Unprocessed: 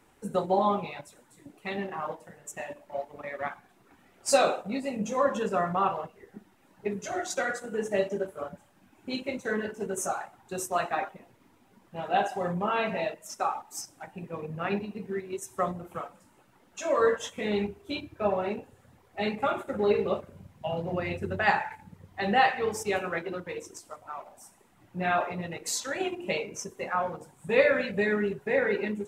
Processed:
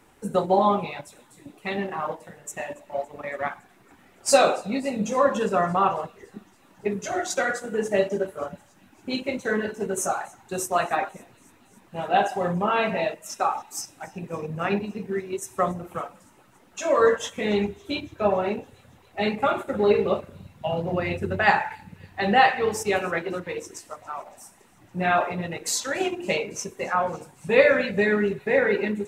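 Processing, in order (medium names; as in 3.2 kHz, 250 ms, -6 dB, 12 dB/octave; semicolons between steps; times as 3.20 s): feedback echo behind a high-pass 281 ms, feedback 72%, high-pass 3 kHz, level -22.5 dB; trim +5 dB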